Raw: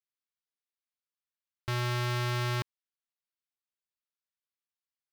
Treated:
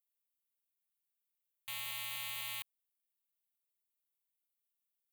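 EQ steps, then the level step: pre-emphasis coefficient 0.97; tilt shelf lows -4.5 dB, about 660 Hz; fixed phaser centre 1500 Hz, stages 6; +1.5 dB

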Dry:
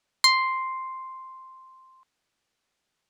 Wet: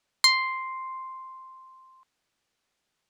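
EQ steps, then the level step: dynamic EQ 1100 Hz, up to -5 dB, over -34 dBFS; 0.0 dB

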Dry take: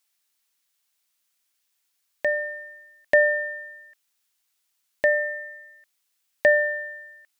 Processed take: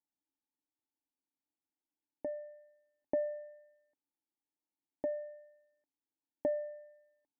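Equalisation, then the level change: vocal tract filter u; +5.0 dB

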